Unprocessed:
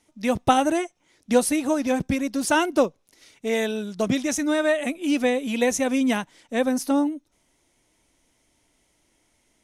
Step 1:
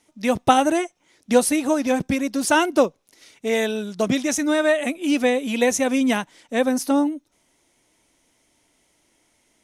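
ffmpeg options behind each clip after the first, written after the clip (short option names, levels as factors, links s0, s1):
-af "lowshelf=f=99:g=-9,volume=1.41"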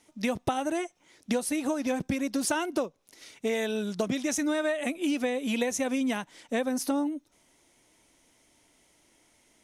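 -af "acompressor=threshold=0.0562:ratio=12"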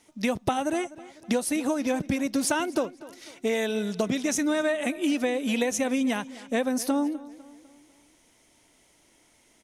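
-filter_complex "[0:a]asplit=2[s0][s1];[s1]adelay=250,lowpass=f=4600:p=1,volume=0.126,asplit=2[s2][s3];[s3]adelay=250,lowpass=f=4600:p=1,volume=0.47,asplit=2[s4][s5];[s5]adelay=250,lowpass=f=4600:p=1,volume=0.47,asplit=2[s6][s7];[s7]adelay=250,lowpass=f=4600:p=1,volume=0.47[s8];[s0][s2][s4][s6][s8]amix=inputs=5:normalize=0,volume=1.33"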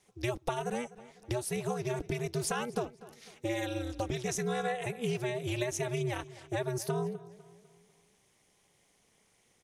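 -af "aeval=exprs='val(0)*sin(2*PI*120*n/s)':c=same,volume=0.596"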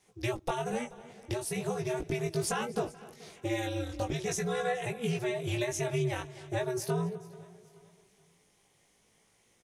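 -af "flanger=delay=18:depth=2.5:speed=0.42,aecho=1:1:431|862|1293:0.0794|0.0326|0.0134,volume=1.58"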